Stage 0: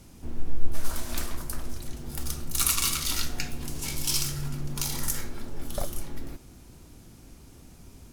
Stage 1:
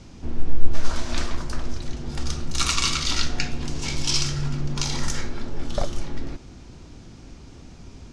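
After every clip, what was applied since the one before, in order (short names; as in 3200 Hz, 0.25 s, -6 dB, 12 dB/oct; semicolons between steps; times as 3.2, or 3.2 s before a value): LPF 6300 Hz 24 dB/oct; gain +6.5 dB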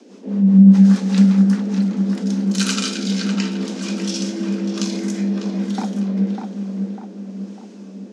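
rotary speaker horn 5 Hz, later 1 Hz, at 1.53; frequency shift +190 Hz; darkening echo 0.599 s, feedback 51%, low-pass 2200 Hz, level -5 dB; gain +1 dB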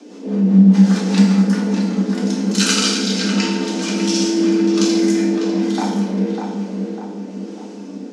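FDN reverb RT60 0.9 s, low-frequency decay 0.75×, high-frequency decay 0.85×, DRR -1 dB; gain +3 dB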